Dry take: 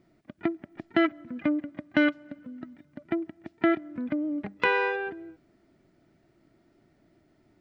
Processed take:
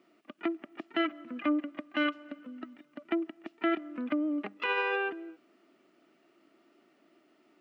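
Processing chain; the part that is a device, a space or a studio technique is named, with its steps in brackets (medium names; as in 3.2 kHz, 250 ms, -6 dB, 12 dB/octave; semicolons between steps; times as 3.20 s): laptop speaker (high-pass 250 Hz 24 dB/octave; peaking EQ 1.2 kHz +11 dB 0.2 oct; peaking EQ 2.8 kHz +10 dB 0.39 oct; peak limiter -20 dBFS, peak gain reduction 13.5 dB)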